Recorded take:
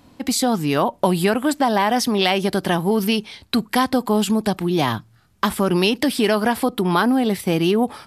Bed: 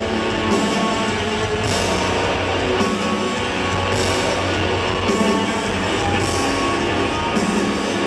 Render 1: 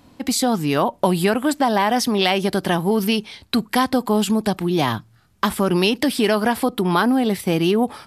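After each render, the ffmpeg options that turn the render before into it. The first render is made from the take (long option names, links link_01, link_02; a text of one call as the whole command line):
ffmpeg -i in.wav -af anull out.wav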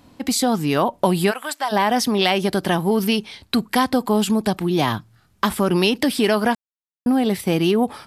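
ffmpeg -i in.wav -filter_complex "[0:a]asplit=3[link_01][link_02][link_03];[link_01]afade=type=out:start_time=1.3:duration=0.02[link_04];[link_02]highpass=920,afade=type=in:start_time=1.3:duration=0.02,afade=type=out:start_time=1.71:duration=0.02[link_05];[link_03]afade=type=in:start_time=1.71:duration=0.02[link_06];[link_04][link_05][link_06]amix=inputs=3:normalize=0,asplit=3[link_07][link_08][link_09];[link_07]atrim=end=6.55,asetpts=PTS-STARTPTS,afade=type=out:start_time=6.546:duration=0.004:curve=hsin[link_10];[link_08]atrim=start=6.55:end=7.06,asetpts=PTS-STARTPTS,volume=0[link_11];[link_09]atrim=start=7.06,asetpts=PTS-STARTPTS,afade=type=in:duration=0.004:curve=hsin[link_12];[link_10][link_11][link_12]concat=n=3:v=0:a=1" out.wav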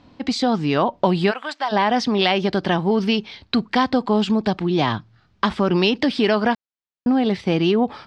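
ffmpeg -i in.wav -af "lowpass=frequency=5100:width=0.5412,lowpass=frequency=5100:width=1.3066" out.wav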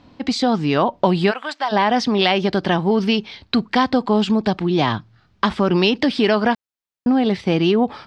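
ffmpeg -i in.wav -af "volume=1.5dB" out.wav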